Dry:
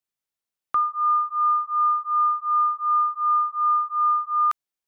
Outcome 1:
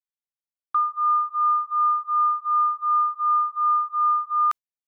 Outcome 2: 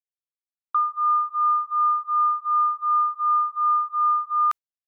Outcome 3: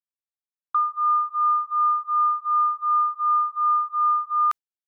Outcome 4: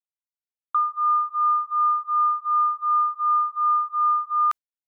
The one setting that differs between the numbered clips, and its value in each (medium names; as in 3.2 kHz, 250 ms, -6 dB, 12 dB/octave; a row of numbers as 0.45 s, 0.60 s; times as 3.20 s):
gate, range: -15 dB, -41 dB, -27 dB, -55 dB